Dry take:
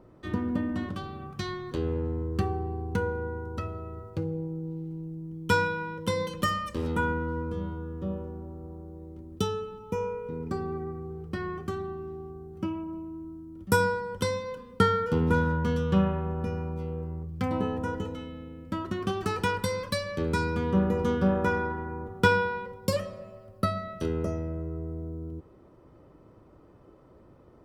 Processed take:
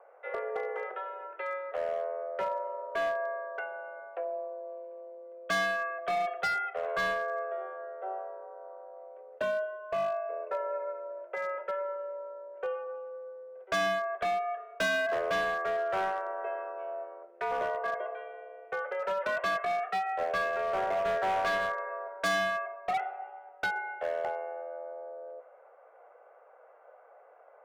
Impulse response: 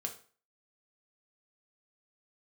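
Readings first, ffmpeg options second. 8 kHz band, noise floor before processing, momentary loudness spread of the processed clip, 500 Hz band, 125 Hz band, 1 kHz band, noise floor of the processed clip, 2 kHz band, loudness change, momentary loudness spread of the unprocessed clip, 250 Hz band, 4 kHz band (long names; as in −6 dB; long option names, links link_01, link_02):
−5.0 dB, −55 dBFS, 14 LU, −1.0 dB, below −25 dB, +0.5 dB, −57 dBFS, +0.5 dB, −2.5 dB, 14 LU, −20.0 dB, −2.5 dB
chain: -filter_complex "[0:a]highpass=frequency=320:width_type=q:width=0.5412,highpass=frequency=320:width_type=q:width=1.307,lowpass=frequency=2300:width_type=q:width=0.5176,lowpass=frequency=2300:width_type=q:width=0.7071,lowpass=frequency=2300:width_type=q:width=1.932,afreqshift=190,asplit=2[link_01][link_02];[1:a]atrim=start_sample=2205,lowpass=5000[link_03];[link_02][link_03]afir=irnorm=-1:irlink=0,volume=-10.5dB[link_04];[link_01][link_04]amix=inputs=2:normalize=0,asoftclip=type=hard:threshold=-26dB"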